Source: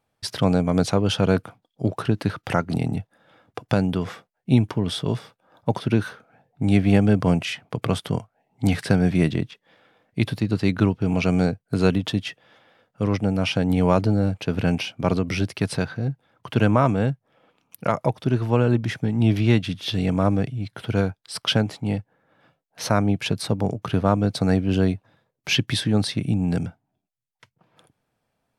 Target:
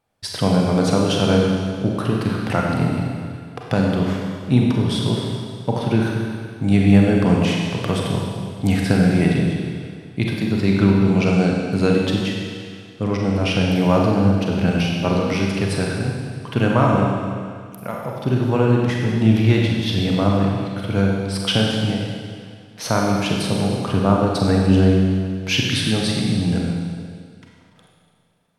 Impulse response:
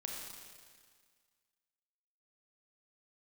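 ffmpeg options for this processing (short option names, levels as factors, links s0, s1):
-filter_complex "[0:a]asettb=1/sr,asplit=3[s0][s1][s2];[s0]atrim=end=17.004[s3];[s1]atrim=start=17:end=18.14,asetpts=PTS-STARTPTS,afade=t=in:d=0.004:c=qsin,afade=t=out:st=1.136:d=0.004:c=qsin,acompressor=threshold=0.01:ratio=1.5[s4];[s2]atrim=start=18.136[s5];[s3][s4]acrossfade=d=0.004:c1=hsin:c2=qsin[s6];[s6][s5]acrossfade=d=0.004:c1=qsin:c2=hsin[s7];[1:a]atrim=start_sample=2205,asetrate=38808,aresample=44100[s8];[s7][s8]afir=irnorm=-1:irlink=0,volume=1.5"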